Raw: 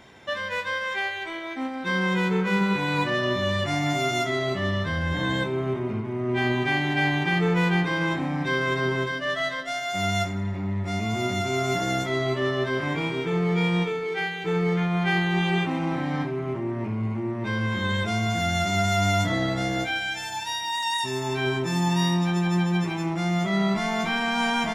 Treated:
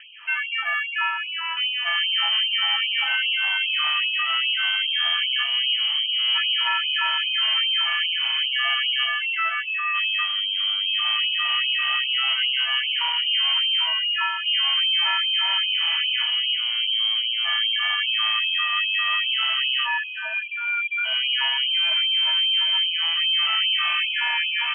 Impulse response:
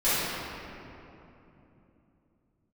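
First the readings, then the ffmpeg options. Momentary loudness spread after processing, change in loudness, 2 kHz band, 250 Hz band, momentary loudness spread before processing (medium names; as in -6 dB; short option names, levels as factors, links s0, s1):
5 LU, +5.0 dB, +4.0 dB, under -40 dB, 6 LU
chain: -filter_complex "[0:a]bandreject=f=50:t=h:w=6,bandreject=f=100:t=h:w=6,bandreject=f=150:t=h:w=6,bandreject=f=200:t=h:w=6,bandreject=f=250:t=h:w=6,bandreject=f=300:t=h:w=6,bandreject=f=350:t=h:w=6,areverse,acompressor=mode=upward:threshold=0.00708:ratio=2.5,areverse,alimiter=limit=0.141:level=0:latency=1:release=332,asplit=2[s0][s1];[s1]aeval=exprs='0.133*sin(PI/2*2.24*val(0)/0.133)':c=same,volume=0.376[s2];[s0][s2]amix=inputs=2:normalize=0,lowpass=f=2800:t=q:w=0.5098,lowpass=f=2800:t=q:w=0.6013,lowpass=f=2800:t=q:w=0.9,lowpass=f=2800:t=q:w=2.563,afreqshift=-3300,afftfilt=real='re*gte(b*sr/1024,560*pow(2500/560,0.5+0.5*sin(2*PI*2.5*pts/sr)))':imag='im*gte(b*sr/1024,560*pow(2500/560,0.5+0.5*sin(2*PI*2.5*pts/sr)))':win_size=1024:overlap=0.75"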